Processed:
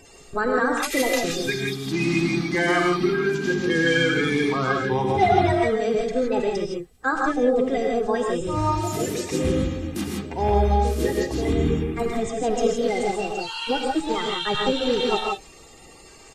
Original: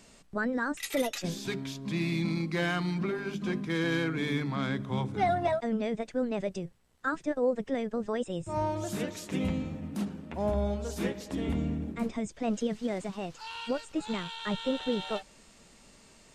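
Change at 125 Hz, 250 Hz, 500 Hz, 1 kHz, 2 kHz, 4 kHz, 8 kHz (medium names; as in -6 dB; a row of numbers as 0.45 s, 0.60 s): +7.0 dB, +7.0 dB, +10.5 dB, +11.5 dB, +11.0 dB, +10.5 dB, +10.5 dB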